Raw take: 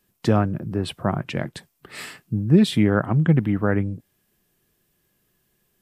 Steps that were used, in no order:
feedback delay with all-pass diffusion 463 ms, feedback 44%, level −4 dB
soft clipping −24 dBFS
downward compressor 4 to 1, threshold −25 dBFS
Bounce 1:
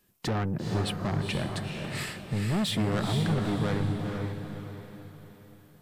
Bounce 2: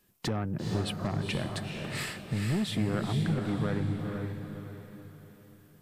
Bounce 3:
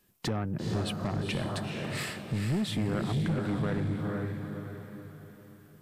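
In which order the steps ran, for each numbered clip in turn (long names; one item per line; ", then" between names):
soft clipping, then downward compressor, then feedback delay with all-pass diffusion
downward compressor, then soft clipping, then feedback delay with all-pass diffusion
downward compressor, then feedback delay with all-pass diffusion, then soft clipping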